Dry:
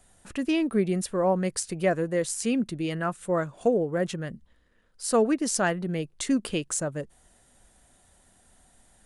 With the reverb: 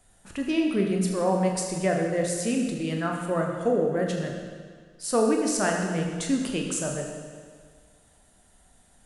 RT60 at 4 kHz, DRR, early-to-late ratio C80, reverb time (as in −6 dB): 1.7 s, 1.0 dB, 4.5 dB, 1.8 s